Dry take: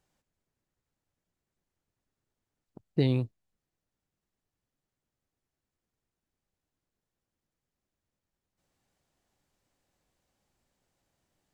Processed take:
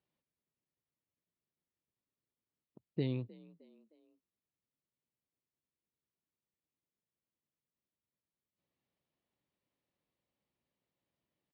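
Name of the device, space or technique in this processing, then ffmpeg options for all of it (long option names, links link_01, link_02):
frequency-shifting delay pedal into a guitar cabinet: -filter_complex "[0:a]asplit=4[link_01][link_02][link_03][link_04];[link_02]adelay=309,afreqshift=52,volume=-22dB[link_05];[link_03]adelay=618,afreqshift=104,volume=-28.9dB[link_06];[link_04]adelay=927,afreqshift=156,volume=-35.9dB[link_07];[link_01][link_05][link_06][link_07]amix=inputs=4:normalize=0,highpass=89,equalizer=frequency=97:width_type=q:width=4:gain=-5,equalizer=frequency=770:width_type=q:width=4:gain=-6,equalizer=frequency=1500:width_type=q:width=4:gain=-7,lowpass=frequency=4000:width=0.5412,lowpass=frequency=4000:width=1.3066,volume=-8.5dB"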